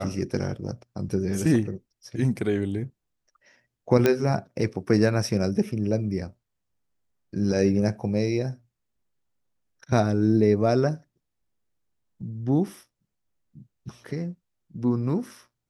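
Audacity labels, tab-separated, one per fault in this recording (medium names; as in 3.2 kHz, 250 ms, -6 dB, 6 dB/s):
4.060000	4.060000	pop -7 dBFS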